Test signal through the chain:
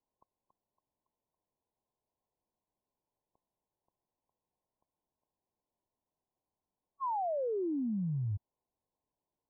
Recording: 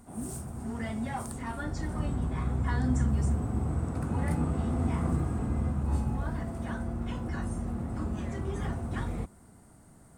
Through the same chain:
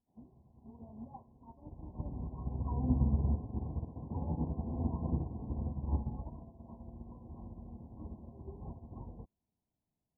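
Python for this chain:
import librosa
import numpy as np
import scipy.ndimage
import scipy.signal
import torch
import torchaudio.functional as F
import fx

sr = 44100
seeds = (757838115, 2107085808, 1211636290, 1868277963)

y = fx.dmg_noise_colour(x, sr, seeds[0], colour='white', level_db=-62.0)
y = fx.brickwall_lowpass(y, sr, high_hz=1100.0)
y = fx.upward_expand(y, sr, threshold_db=-45.0, expansion=2.5)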